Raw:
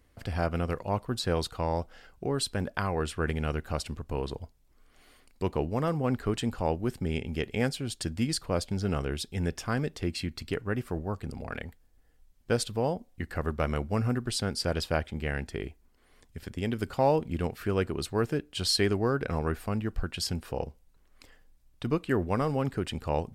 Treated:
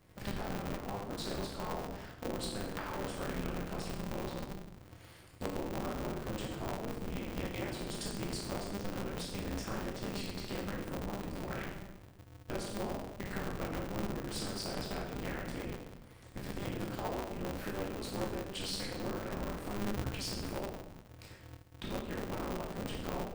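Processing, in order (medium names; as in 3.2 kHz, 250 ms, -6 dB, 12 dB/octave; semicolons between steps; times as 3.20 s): octave divider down 1 oct, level -5 dB; compression 10:1, threshold -37 dBFS, peak gain reduction 18.5 dB; reverberation RT60 1.0 s, pre-delay 12 ms, DRR -4 dB; polarity switched at an audio rate 100 Hz; trim -3 dB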